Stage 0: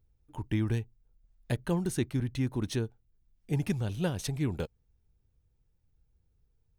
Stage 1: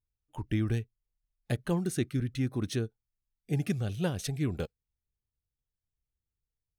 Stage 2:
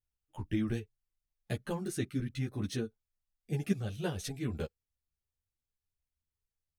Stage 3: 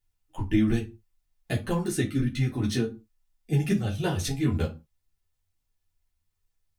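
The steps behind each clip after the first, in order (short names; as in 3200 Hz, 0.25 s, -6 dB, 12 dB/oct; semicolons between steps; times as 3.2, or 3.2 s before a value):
spectral noise reduction 19 dB
ensemble effect
reverb, pre-delay 3 ms, DRR 0 dB; gain +6 dB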